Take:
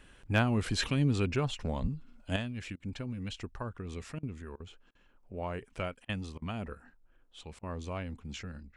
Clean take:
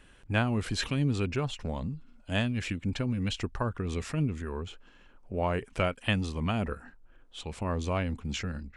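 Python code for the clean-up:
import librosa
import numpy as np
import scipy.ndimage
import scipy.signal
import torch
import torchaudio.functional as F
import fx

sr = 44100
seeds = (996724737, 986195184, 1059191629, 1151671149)

y = fx.fix_declip(x, sr, threshold_db=-16.0)
y = fx.highpass(y, sr, hz=140.0, slope=24, at=(1.81, 1.93), fade=0.02)
y = fx.fix_interpolate(y, sr, at_s=(2.76, 4.19, 4.56, 4.91, 6.05, 6.38, 7.59), length_ms=39.0)
y = fx.fix_level(y, sr, at_s=2.36, step_db=8.0)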